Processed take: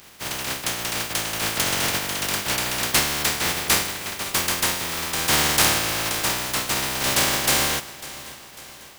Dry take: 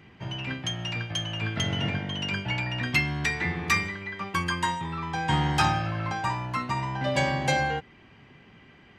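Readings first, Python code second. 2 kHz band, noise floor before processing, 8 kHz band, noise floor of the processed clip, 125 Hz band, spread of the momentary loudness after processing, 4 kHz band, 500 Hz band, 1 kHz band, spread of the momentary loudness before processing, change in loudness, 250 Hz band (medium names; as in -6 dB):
+3.5 dB, -54 dBFS, +18.5 dB, -43 dBFS, -5.5 dB, 11 LU, +9.5 dB, +3.5 dB, +1.0 dB, 7 LU, +6.5 dB, -0.5 dB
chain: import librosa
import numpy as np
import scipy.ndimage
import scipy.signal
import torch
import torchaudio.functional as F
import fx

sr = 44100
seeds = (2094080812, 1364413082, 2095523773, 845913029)

p1 = fx.spec_flatten(x, sr, power=0.17)
p2 = p1 + fx.echo_feedback(p1, sr, ms=548, feedback_pct=51, wet_db=-17.0, dry=0)
y = p2 * 10.0 ** (5.0 / 20.0)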